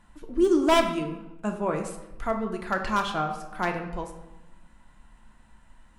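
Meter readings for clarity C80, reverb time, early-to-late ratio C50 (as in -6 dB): 10.0 dB, 0.95 s, 8.0 dB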